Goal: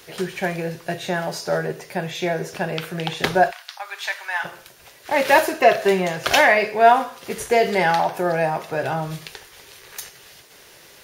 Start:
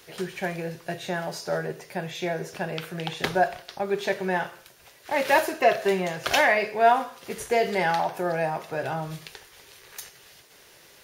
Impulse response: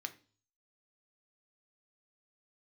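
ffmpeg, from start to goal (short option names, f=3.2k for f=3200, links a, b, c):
-filter_complex "[0:a]asplit=3[a][b][c];[a]afade=t=out:st=3.5:d=0.02[d];[b]highpass=f=960:w=0.5412,highpass=f=960:w=1.3066,afade=t=in:st=3.5:d=0.02,afade=t=out:st=4.43:d=0.02[e];[c]afade=t=in:st=4.43:d=0.02[f];[d][e][f]amix=inputs=3:normalize=0,volume=5.5dB"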